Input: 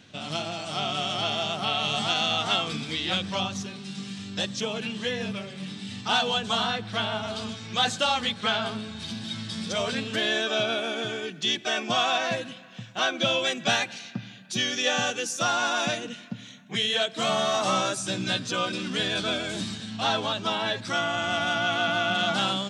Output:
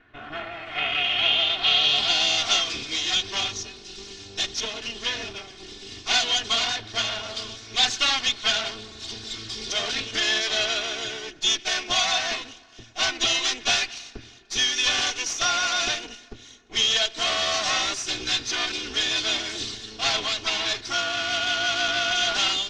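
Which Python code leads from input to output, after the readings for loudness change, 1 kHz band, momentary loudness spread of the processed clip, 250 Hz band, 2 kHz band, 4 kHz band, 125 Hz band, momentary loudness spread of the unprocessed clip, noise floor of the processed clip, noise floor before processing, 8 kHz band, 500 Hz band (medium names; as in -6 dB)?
+3.5 dB, -2.5 dB, 15 LU, -8.0 dB, +2.5 dB, +5.5 dB, -8.5 dB, 11 LU, -47 dBFS, -45 dBFS, +7.0 dB, -4.5 dB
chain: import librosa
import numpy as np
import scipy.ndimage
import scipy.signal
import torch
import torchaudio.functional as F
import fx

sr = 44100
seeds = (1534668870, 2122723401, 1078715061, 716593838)

y = fx.lower_of_two(x, sr, delay_ms=2.8)
y = fx.filter_sweep_lowpass(y, sr, from_hz=1700.0, to_hz=5800.0, start_s=0.32, end_s=2.41, q=2.8)
y = fx.dynamic_eq(y, sr, hz=2700.0, q=0.76, threshold_db=-39.0, ratio=4.0, max_db=8)
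y = F.gain(torch.from_numpy(y), -3.0).numpy()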